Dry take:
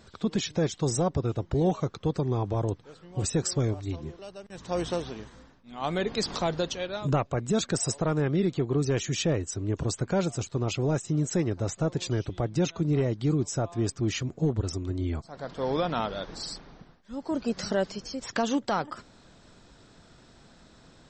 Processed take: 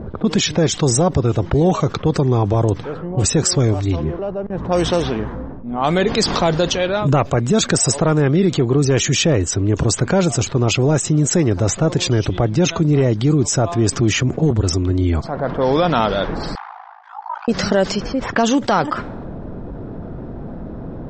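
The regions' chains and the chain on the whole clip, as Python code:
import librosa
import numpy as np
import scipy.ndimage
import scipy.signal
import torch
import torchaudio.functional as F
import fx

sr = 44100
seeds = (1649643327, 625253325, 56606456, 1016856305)

y = fx.chain(x, sr, fx.dynamic_eq(hz=4300.0, q=1.6, threshold_db=-50.0, ratio=4.0, max_db=-5),
    fx.band_squash(depth_pct=40), at=(13.92, 14.51))
y = fx.chain(y, sr, fx.steep_highpass(hz=770.0, slope=96),
    fx.ring_mod(carrier_hz=27.0), at=(16.55, 17.48))
y = fx.env_lowpass(y, sr, base_hz=510.0, full_db=-24.0)
y = fx.peak_eq(y, sr, hz=4100.0, db=-2.5, octaves=0.34)
y = fx.env_flatten(y, sr, amount_pct=50)
y = y * librosa.db_to_amplitude(9.0)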